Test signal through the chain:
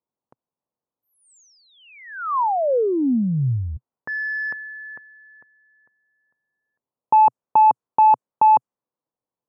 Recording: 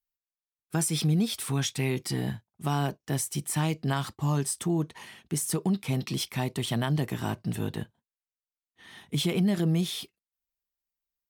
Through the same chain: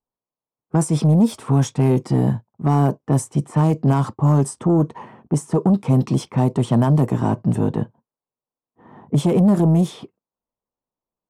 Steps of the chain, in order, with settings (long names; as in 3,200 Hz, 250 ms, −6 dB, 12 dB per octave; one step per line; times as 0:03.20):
sine wavefolder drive 6 dB, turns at −14 dBFS
octave-band graphic EQ 125/250/500/1,000/2,000/4,000/8,000 Hz +11/+10/+10/+12/−4/−7/+6 dB
low-pass that shuts in the quiet parts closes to 1,100 Hz, open at −2.5 dBFS
level −9 dB